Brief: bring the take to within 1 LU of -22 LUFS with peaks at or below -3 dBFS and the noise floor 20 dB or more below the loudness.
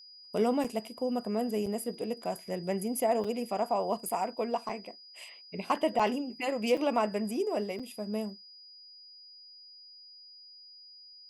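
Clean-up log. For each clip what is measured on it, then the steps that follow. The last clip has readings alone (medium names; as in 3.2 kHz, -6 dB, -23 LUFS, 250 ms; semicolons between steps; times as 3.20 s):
dropouts 8; longest dropout 5.4 ms; steady tone 4.9 kHz; tone level -50 dBFS; loudness -32.0 LUFS; peak level -15.0 dBFS; loudness target -22.0 LUFS
-> interpolate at 0.64/1.66/3.24/4.09/4.69/5.99/6.77/7.79 s, 5.4 ms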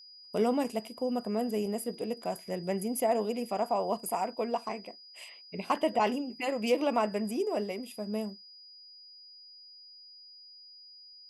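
dropouts 0; steady tone 4.9 kHz; tone level -50 dBFS
-> band-stop 4.9 kHz, Q 30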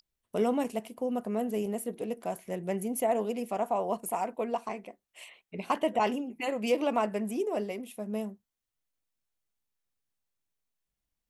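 steady tone not found; loudness -32.0 LUFS; peak level -15.0 dBFS; loudness target -22.0 LUFS
-> trim +10 dB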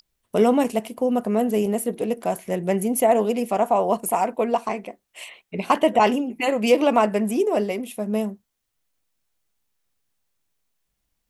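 loudness -22.0 LUFS; peak level -5.0 dBFS; noise floor -77 dBFS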